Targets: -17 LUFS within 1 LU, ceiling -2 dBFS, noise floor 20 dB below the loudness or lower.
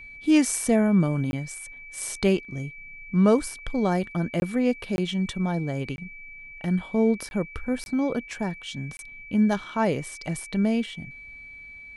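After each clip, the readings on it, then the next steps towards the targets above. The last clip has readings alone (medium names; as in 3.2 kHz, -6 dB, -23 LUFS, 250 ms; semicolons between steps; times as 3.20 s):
dropouts 7; longest dropout 21 ms; steady tone 2.3 kHz; tone level -41 dBFS; loudness -25.5 LUFS; peak level -7.5 dBFS; loudness target -17.0 LUFS
-> interpolate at 1.31/4.40/4.96/5.96/7.29/7.84/8.97 s, 21 ms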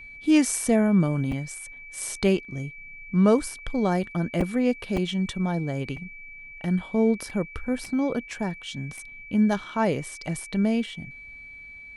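dropouts 0; steady tone 2.3 kHz; tone level -41 dBFS
-> band-stop 2.3 kHz, Q 30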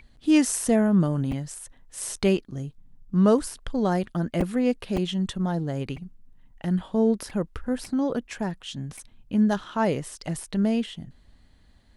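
steady tone not found; loudness -25.5 LUFS; peak level -8.0 dBFS; loudness target -17.0 LUFS
-> trim +8.5 dB; peak limiter -2 dBFS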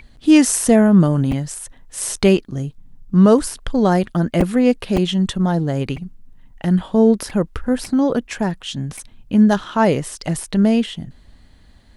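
loudness -17.5 LUFS; peak level -2.0 dBFS; noise floor -49 dBFS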